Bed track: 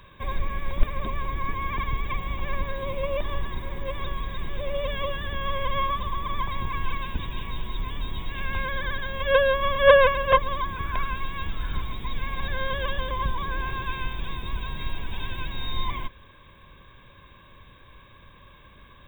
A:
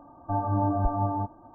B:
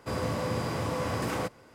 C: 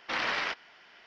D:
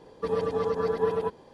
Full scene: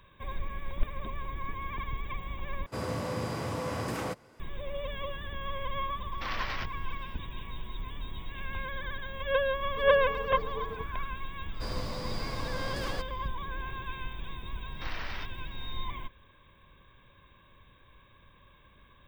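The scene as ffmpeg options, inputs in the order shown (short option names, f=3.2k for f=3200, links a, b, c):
-filter_complex "[2:a]asplit=2[a][b];[3:a]asplit=2[c][d];[0:a]volume=-8dB[e];[c]tremolo=f=10:d=0.31[f];[b]equalizer=f=4.6k:w=2.8:g=12.5[g];[e]asplit=2[h][i];[h]atrim=end=2.664[j];[a]atrim=end=1.74,asetpts=PTS-STARTPTS,volume=-3dB[k];[i]atrim=start=4.396[l];[f]atrim=end=1.06,asetpts=PTS-STARTPTS,volume=-5dB,afade=t=in:d=0.004:c=hsin,afade=t=out:st=1.056:d=0.004:c=hsin,adelay=6120[m];[4:a]atrim=end=1.53,asetpts=PTS-STARTPTS,volume=-13.5dB,afade=t=in:d=0.004:c=hsin,afade=t=out:st=1.526:d=0.004:c=hsin,adelay=420714S[n];[g]atrim=end=1.74,asetpts=PTS-STARTPTS,volume=-8dB,afade=t=in:d=0.004:c=hsin,afade=t=out:st=1.736:d=0.004:c=hsin,adelay=508914S[o];[d]atrim=end=1.06,asetpts=PTS-STARTPTS,volume=-10.5dB,afade=t=in:d=0.004:c=hsin,afade=t=out:st=1.056:d=0.004:c=hsin,adelay=14720[p];[j][k]acrossfade=d=0.004:c1=hsin:c2=hsin[q];[q][l]acrossfade=d=0.004:c1=hsin:c2=hsin[r];[r][m][n][o][p]amix=inputs=5:normalize=0"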